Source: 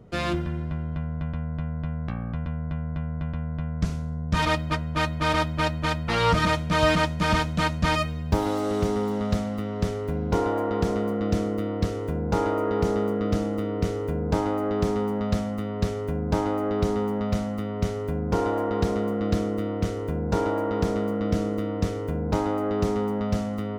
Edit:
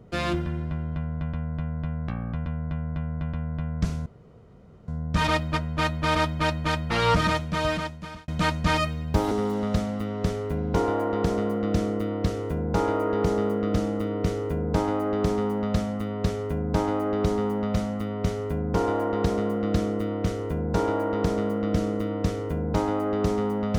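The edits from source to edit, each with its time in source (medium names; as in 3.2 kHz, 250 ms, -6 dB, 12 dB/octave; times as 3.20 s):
4.06 s: insert room tone 0.82 s
6.34–7.46 s: fade out
8.49–8.89 s: delete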